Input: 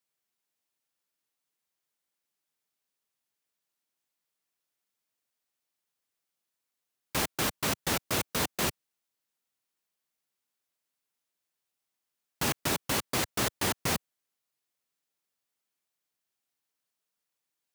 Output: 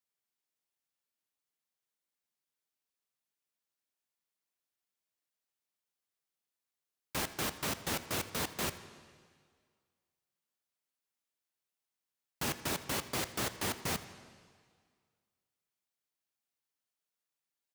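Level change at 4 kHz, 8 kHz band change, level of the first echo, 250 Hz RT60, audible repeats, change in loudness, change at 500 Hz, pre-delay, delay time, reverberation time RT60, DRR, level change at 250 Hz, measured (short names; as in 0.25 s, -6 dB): -5.5 dB, -6.0 dB, -20.0 dB, 1.9 s, 1, -6.0 dB, -5.5 dB, 6 ms, 82 ms, 1.9 s, 11.0 dB, -6.0 dB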